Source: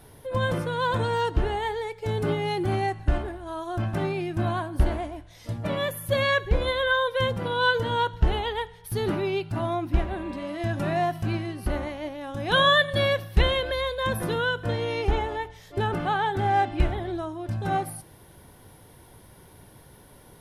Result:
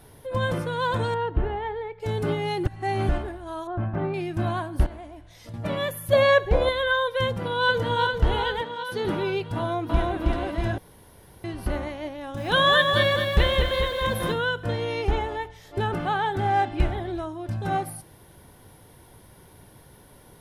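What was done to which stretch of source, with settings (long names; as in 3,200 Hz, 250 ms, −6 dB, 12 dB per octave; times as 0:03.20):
0:01.14–0:02.00: high-frequency loss of the air 460 metres
0:02.66–0:03.09: reverse
0:03.67–0:04.14: low-pass filter 1,600 Hz
0:04.86–0:05.54: downward compressor 2.5 to 1, threshold −41 dBFS
0:06.13–0:06.69: parametric band 680 Hz +11.5 dB 1 octave
0:07.28–0:08.03: delay throw 400 ms, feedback 65%, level −5.5 dB
0:08.61–0:09.05: three-way crossover with the lows and the highs turned down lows −22 dB, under 160 Hz, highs −13 dB, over 7,500 Hz
0:09.57–0:10.19: delay throw 320 ms, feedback 55%, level −1 dB
0:10.78–0:11.44: fill with room tone
0:12.16–0:14.32: feedback echo at a low word length 214 ms, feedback 55%, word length 8 bits, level −5 dB
0:15.27–0:17.27: single-tap delay 375 ms −21.5 dB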